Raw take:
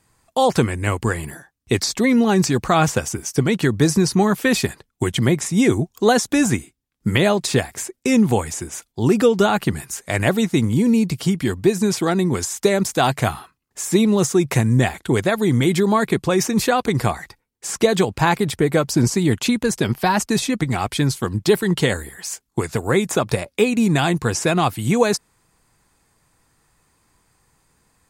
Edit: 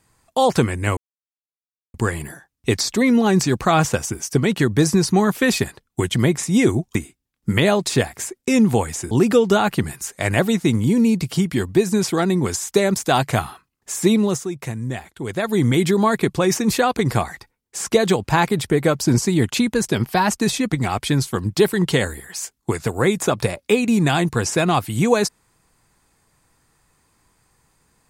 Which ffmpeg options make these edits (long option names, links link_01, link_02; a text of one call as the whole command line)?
ffmpeg -i in.wav -filter_complex "[0:a]asplit=6[link_01][link_02][link_03][link_04][link_05][link_06];[link_01]atrim=end=0.97,asetpts=PTS-STARTPTS,afade=type=out:start_time=0.966:duration=0.004:curve=hsin,apad=pad_dur=0.97[link_07];[link_02]atrim=start=0.97:end=5.982,asetpts=PTS-STARTPTS,afade=type=in:duration=0.004:curve=hsin[link_08];[link_03]atrim=start=6.528:end=8.692[link_09];[link_04]atrim=start=8.998:end=14.37,asetpts=PTS-STARTPTS,afade=type=out:start_time=5.052:duration=0.32:silence=0.298538[link_10];[link_05]atrim=start=14.37:end=15.14,asetpts=PTS-STARTPTS,volume=-10.5dB[link_11];[link_06]atrim=start=15.14,asetpts=PTS-STARTPTS,afade=type=in:duration=0.32:silence=0.298538[link_12];[link_07][link_08]concat=n=2:v=0:a=1[link_13];[link_13][link_09]acrossfade=duration=0.004:curve1=hsin:curve2=hsin[link_14];[link_10][link_11][link_12]concat=n=3:v=0:a=1[link_15];[link_14][link_15]acrossfade=duration=0.004:curve1=hsin:curve2=hsin" out.wav